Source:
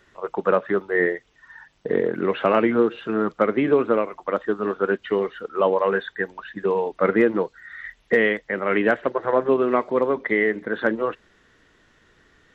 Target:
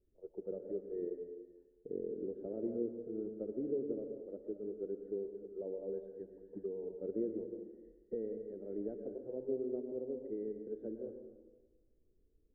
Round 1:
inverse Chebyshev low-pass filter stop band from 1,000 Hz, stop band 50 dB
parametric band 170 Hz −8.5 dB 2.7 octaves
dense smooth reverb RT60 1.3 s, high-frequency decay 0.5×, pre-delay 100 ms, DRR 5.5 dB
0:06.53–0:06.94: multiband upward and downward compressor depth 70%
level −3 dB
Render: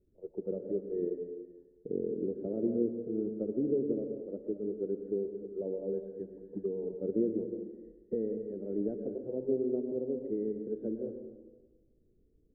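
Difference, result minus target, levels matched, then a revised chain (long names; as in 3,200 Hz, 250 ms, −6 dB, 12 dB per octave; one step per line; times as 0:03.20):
125 Hz band +3.5 dB
inverse Chebyshev low-pass filter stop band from 1,000 Hz, stop band 50 dB
parametric band 170 Hz −20 dB 2.7 octaves
dense smooth reverb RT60 1.3 s, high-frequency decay 0.5×, pre-delay 100 ms, DRR 5.5 dB
0:06.53–0:06.94: multiband upward and downward compressor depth 70%
level −3 dB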